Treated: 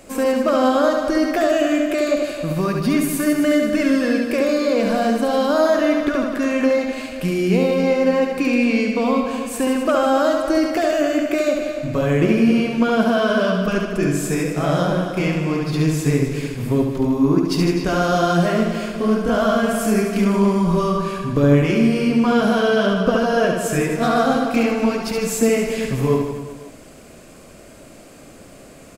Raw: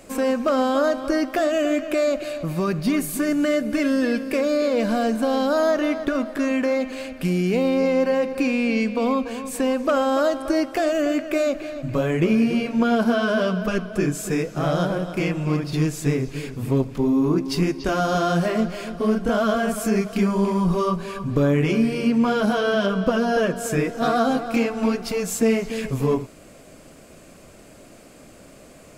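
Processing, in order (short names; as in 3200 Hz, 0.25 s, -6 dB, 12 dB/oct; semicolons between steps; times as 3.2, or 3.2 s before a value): reverse bouncing-ball echo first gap 70 ms, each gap 1.2×, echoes 5; gain +1.5 dB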